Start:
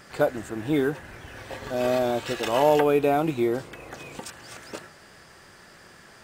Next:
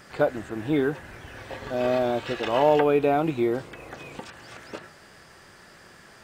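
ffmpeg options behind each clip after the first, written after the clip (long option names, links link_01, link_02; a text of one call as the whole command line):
ffmpeg -i in.wav -filter_complex "[0:a]acrossover=split=4500[link_01][link_02];[link_02]acompressor=threshold=-56dB:ratio=4:attack=1:release=60[link_03];[link_01][link_03]amix=inputs=2:normalize=0" out.wav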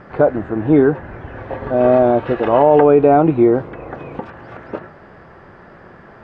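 ffmpeg -i in.wav -af "lowpass=1200,alimiter=level_in=13dB:limit=-1dB:release=50:level=0:latency=1,volume=-1dB" out.wav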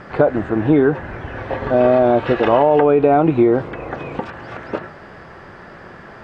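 ffmpeg -i in.wav -af "highshelf=frequency=2500:gain=10,acompressor=threshold=-11dB:ratio=6,volume=2dB" out.wav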